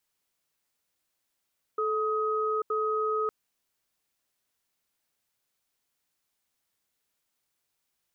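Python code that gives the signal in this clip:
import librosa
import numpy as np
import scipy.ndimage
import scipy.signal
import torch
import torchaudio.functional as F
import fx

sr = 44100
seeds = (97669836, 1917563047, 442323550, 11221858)

y = fx.cadence(sr, length_s=1.51, low_hz=434.0, high_hz=1260.0, on_s=0.84, off_s=0.08, level_db=-28.0)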